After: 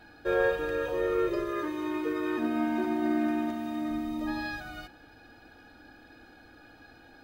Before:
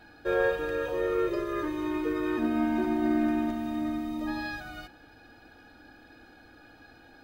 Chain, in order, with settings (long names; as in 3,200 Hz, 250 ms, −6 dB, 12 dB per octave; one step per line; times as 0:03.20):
0:01.51–0:03.91: high-pass filter 210 Hz 6 dB per octave